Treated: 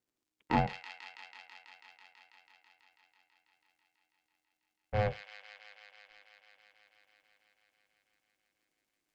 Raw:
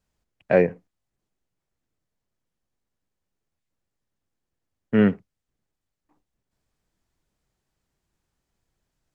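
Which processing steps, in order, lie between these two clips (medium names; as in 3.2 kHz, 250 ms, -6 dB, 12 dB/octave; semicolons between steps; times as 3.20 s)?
tracing distortion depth 0.096 ms; bass shelf 290 Hz -6 dB; ring modulator 310 Hz; crackle 57 per s -61 dBFS; feedback echo behind a high-pass 164 ms, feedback 83%, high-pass 2.5 kHz, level -3.5 dB; trim -6.5 dB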